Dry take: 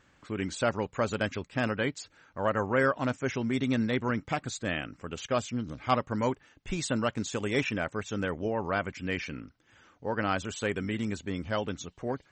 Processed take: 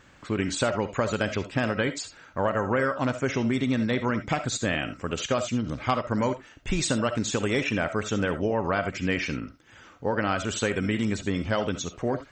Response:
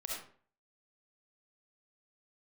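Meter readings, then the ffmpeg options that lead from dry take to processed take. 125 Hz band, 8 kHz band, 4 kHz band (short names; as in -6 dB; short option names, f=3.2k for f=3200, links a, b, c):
+4.5 dB, +7.5 dB, +5.5 dB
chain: -filter_complex "[0:a]acompressor=threshold=-30dB:ratio=6,asplit=2[a][b];[1:a]atrim=start_sample=2205,atrim=end_sample=3969[c];[b][c]afir=irnorm=-1:irlink=0,volume=-4dB[d];[a][d]amix=inputs=2:normalize=0,volume=5.5dB"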